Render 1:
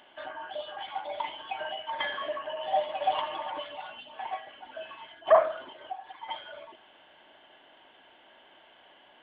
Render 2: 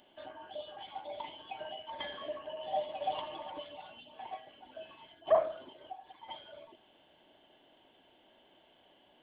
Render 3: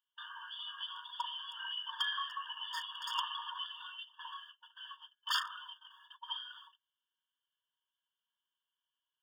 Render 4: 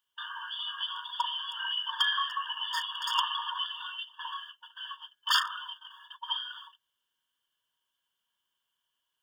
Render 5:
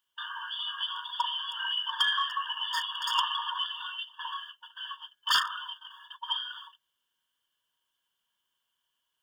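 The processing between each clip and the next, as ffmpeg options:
-af "equalizer=f=1.5k:t=o:w=2.3:g=-15,volume=1dB"
-af "aeval=exprs='0.0266*(abs(mod(val(0)/0.0266+3,4)-2)-1)':c=same,agate=range=-33dB:threshold=-53dB:ratio=16:detection=peak,afftfilt=real='re*eq(mod(floor(b*sr/1024/910),2),1)':imag='im*eq(mod(floor(b*sr/1024/910),2),1)':win_size=1024:overlap=0.75,volume=9.5dB"
-af "acontrast=80,volume=1dB"
-af "asoftclip=type=tanh:threshold=-15dB,volume=1.5dB"

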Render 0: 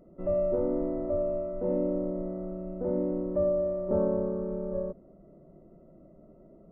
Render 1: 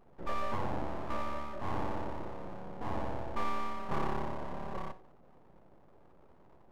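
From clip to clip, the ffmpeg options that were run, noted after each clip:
-af "bandreject=f=93.36:t=h:w=4,bandreject=f=186.72:t=h:w=4,bandreject=f=280.08:t=h:w=4,bandreject=f=373.44:t=h:w=4,bandreject=f=466.8:t=h:w=4,bandreject=f=560.16:t=h:w=4,bandreject=f=653.52:t=h:w=4,bandreject=f=746.88:t=h:w=4,bandreject=f=840.24:t=h:w=4,bandreject=f=933.6:t=h:w=4,bandreject=f=1.02696k:t=h:w=4,bandreject=f=1.12032k:t=h:w=4,bandreject=f=1.21368k:t=h:w=4,bandreject=f=1.30704k:t=h:w=4,bandreject=f=1.4004k:t=h:w=4,bandreject=f=1.49376k:t=h:w=4,bandreject=f=1.58712k:t=h:w=4,bandreject=f=1.68048k:t=h:w=4,bandreject=f=1.77384k:t=h:w=4,bandreject=f=1.8672k:t=h:w=4,bandreject=f=1.96056k:t=h:w=4,bandreject=f=2.05392k:t=h:w=4,bandreject=f=2.14728k:t=h:w=4,bandreject=f=2.24064k:t=h:w=4,bandreject=f=2.334k:t=h:w=4,bandreject=f=2.42736k:t=h:w=4,bandreject=f=2.52072k:t=h:w=4,bandreject=f=2.61408k:t=h:w=4,bandreject=f=2.70744k:t=h:w=4,bandreject=f=2.8008k:t=h:w=4,bandreject=f=2.89416k:t=h:w=4,bandreject=f=2.98752k:t=h:w=4,bandreject=f=3.08088k:t=h:w=4,aeval=exprs='abs(val(0))':c=same,volume=-3.5dB"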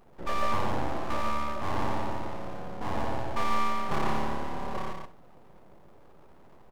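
-filter_complex "[0:a]highshelf=f=2.3k:g=7.5,asplit=2[a][b];[b]aecho=0:1:137:0.596[c];[a][c]amix=inputs=2:normalize=0,volume=3.5dB"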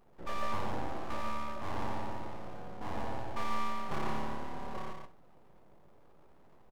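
-filter_complex "[0:a]asplit=2[a][b];[b]adelay=19,volume=-13dB[c];[a][c]amix=inputs=2:normalize=0,volume=-7dB"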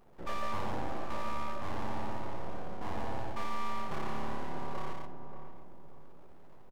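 -filter_complex "[0:a]asplit=2[a][b];[b]adelay=582,lowpass=f=960:p=1,volume=-10dB,asplit=2[c][d];[d]adelay=582,lowpass=f=960:p=1,volume=0.4,asplit=2[e][f];[f]adelay=582,lowpass=f=960:p=1,volume=0.4,asplit=2[g][h];[h]adelay=582,lowpass=f=960:p=1,volume=0.4[i];[a][c][e][g][i]amix=inputs=5:normalize=0,areverse,acompressor=threshold=-30dB:ratio=6,areverse,volume=3dB"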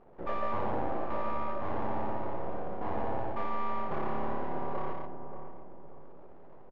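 -af "lowpass=2.3k,equalizer=f=520:t=o:w=2:g=7"

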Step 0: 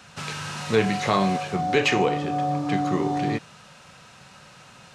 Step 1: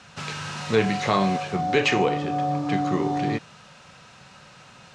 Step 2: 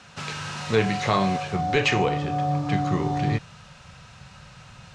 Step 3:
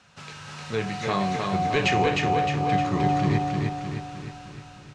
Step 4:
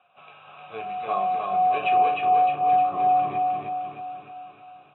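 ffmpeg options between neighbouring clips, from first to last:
-af "lowpass=7.8k"
-af "asubboost=boost=7.5:cutoff=110"
-af "dynaudnorm=f=470:g=5:m=11.5dB,aecho=1:1:308|616|924|1232|1540|1848|2156:0.708|0.368|0.191|0.0995|0.0518|0.0269|0.014,volume=-8.5dB"
-filter_complex "[0:a]asplit=3[a][b][c];[a]bandpass=f=730:t=q:w=8,volume=0dB[d];[b]bandpass=f=1.09k:t=q:w=8,volume=-6dB[e];[c]bandpass=f=2.44k:t=q:w=8,volume=-9dB[f];[d][e][f]amix=inputs=3:normalize=0,volume=6.5dB" -ar 22050 -c:a aac -b:a 16k

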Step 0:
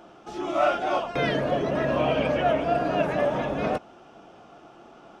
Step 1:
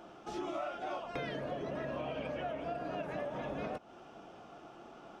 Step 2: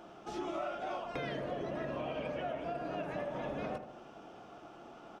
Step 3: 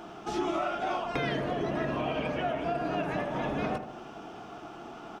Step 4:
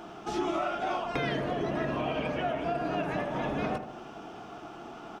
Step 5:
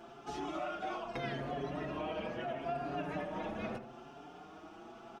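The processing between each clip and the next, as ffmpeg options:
-af "acompressor=threshold=-32dB:ratio=12,volume=-3.5dB"
-filter_complex "[0:a]asplit=2[a][b];[b]adelay=78,lowpass=f=2k:p=1,volume=-9dB,asplit=2[c][d];[d]adelay=78,lowpass=f=2k:p=1,volume=0.54,asplit=2[e][f];[f]adelay=78,lowpass=f=2k:p=1,volume=0.54,asplit=2[g][h];[h]adelay=78,lowpass=f=2k:p=1,volume=0.54,asplit=2[i][j];[j]adelay=78,lowpass=f=2k:p=1,volume=0.54,asplit=2[k][l];[l]adelay=78,lowpass=f=2k:p=1,volume=0.54[m];[a][c][e][g][i][k][m]amix=inputs=7:normalize=0"
-af "equalizer=f=550:t=o:w=0.24:g=-9.5,volume=9dB"
-af anull
-filter_complex "[0:a]asplit=2[a][b];[b]adelay=5.5,afreqshift=0.78[c];[a][c]amix=inputs=2:normalize=1,volume=-5dB"

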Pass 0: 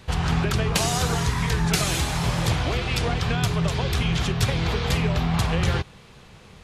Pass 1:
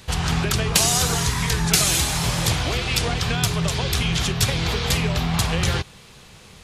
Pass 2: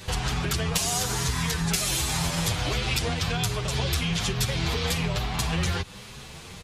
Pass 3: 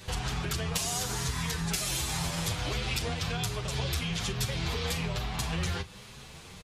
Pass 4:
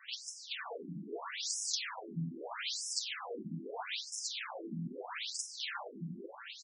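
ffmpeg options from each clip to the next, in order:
-af "highshelf=f=3.6k:g=11"
-filter_complex "[0:a]acompressor=threshold=-27dB:ratio=6,asplit=2[a][b];[b]adelay=8,afreqshift=1.2[c];[a][c]amix=inputs=2:normalize=1,volume=6.5dB"
-filter_complex "[0:a]asplit=2[a][b];[b]adelay=38,volume=-14dB[c];[a][c]amix=inputs=2:normalize=0,volume=-5.5dB"
-af "aecho=1:1:440|704|862.4|957.4|1014:0.631|0.398|0.251|0.158|0.1,afftfilt=real='re*between(b*sr/1024,220*pow(7300/220,0.5+0.5*sin(2*PI*0.78*pts/sr))/1.41,220*pow(7300/220,0.5+0.5*sin(2*PI*0.78*pts/sr))*1.41)':imag='im*between(b*sr/1024,220*pow(7300/220,0.5+0.5*sin(2*PI*0.78*pts/sr))/1.41,220*pow(7300/220,0.5+0.5*sin(2*PI*0.78*pts/sr))*1.41)':win_size=1024:overlap=0.75"

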